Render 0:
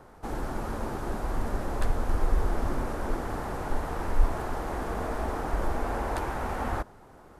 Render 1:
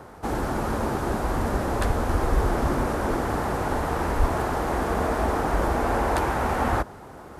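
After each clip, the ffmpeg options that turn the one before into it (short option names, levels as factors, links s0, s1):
-af "highpass=50,areverse,acompressor=mode=upward:threshold=0.00562:ratio=2.5,areverse,volume=2.51"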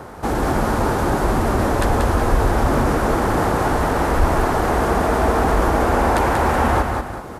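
-filter_complex "[0:a]asplit=2[s0][s1];[s1]alimiter=limit=0.0841:level=0:latency=1,volume=1.26[s2];[s0][s2]amix=inputs=2:normalize=0,aecho=1:1:186|374:0.596|0.224,volume=1.12"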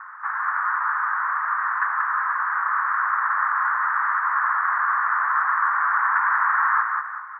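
-af "asuperpass=centerf=1400:order=8:qfactor=1.7,volume=1.88"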